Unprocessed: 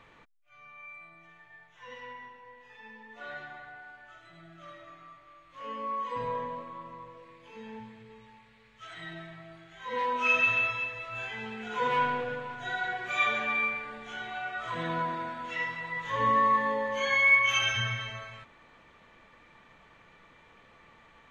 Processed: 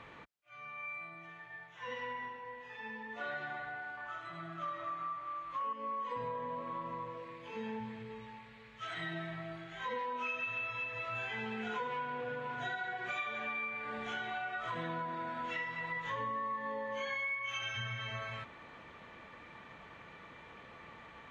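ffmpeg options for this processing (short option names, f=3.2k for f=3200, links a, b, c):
-filter_complex "[0:a]asettb=1/sr,asplit=3[a][b][c];[a]atrim=end=3.974[d];[b]atrim=start=3.97:end=5.73,asetpts=PTS-STARTPTS,afade=t=in:d=0.004:c=qsin,afade=t=out:st=1.756:d=0.004:c=qsin,equalizer=f=1.1k:w=2.8:g=12[e];[c]atrim=start=5.726[f];[d][e]acrossfade=d=0.004:c1=hsin:c2=qsin[g];[g][f]acrossfade=d=0.004:c1=qsin:c2=hsin,highpass=54,highshelf=f=6.4k:g=-10,acompressor=threshold=-41dB:ratio=10,volume=5dB"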